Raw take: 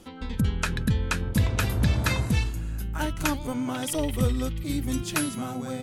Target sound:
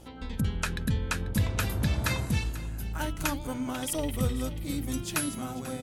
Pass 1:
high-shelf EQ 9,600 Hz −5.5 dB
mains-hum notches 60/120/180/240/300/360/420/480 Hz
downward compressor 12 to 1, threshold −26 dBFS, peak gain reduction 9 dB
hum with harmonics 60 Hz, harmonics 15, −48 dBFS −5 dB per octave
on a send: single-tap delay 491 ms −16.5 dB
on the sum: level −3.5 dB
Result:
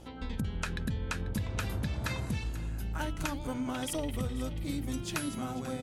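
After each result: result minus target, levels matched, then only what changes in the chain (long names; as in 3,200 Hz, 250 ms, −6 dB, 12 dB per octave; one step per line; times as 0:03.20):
downward compressor: peak gain reduction +9 dB; 8,000 Hz band −2.5 dB
remove: downward compressor 12 to 1, threshold −26 dBFS, peak gain reduction 9 dB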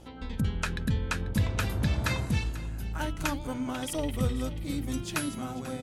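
8,000 Hz band −4.0 dB
change: high-shelf EQ 9,600 Hz +5 dB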